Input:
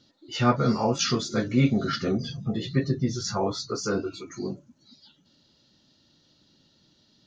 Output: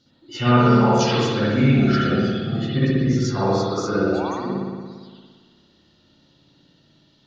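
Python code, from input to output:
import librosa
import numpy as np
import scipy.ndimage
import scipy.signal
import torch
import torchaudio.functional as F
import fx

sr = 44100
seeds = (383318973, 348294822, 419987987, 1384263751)

y = fx.spec_paint(x, sr, seeds[0], shape='rise', start_s=4.02, length_s=0.27, low_hz=500.0, high_hz=1200.0, level_db=-35.0)
y = fx.rev_spring(y, sr, rt60_s=1.6, pass_ms=(57,), chirp_ms=70, drr_db=-8.5)
y = y * 10.0 ** (-2.0 / 20.0)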